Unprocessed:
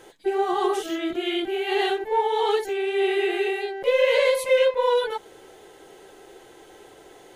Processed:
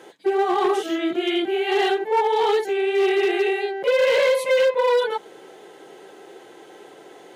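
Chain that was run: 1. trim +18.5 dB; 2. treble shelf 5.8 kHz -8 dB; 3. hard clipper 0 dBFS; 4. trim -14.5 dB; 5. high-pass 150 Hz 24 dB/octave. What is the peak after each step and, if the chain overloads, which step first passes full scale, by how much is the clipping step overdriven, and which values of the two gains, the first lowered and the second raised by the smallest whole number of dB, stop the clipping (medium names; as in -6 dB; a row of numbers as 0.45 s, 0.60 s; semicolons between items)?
+9.5 dBFS, +9.0 dBFS, 0.0 dBFS, -14.5 dBFS, -9.0 dBFS; step 1, 9.0 dB; step 1 +9.5 dB, step 4 -5.5 dB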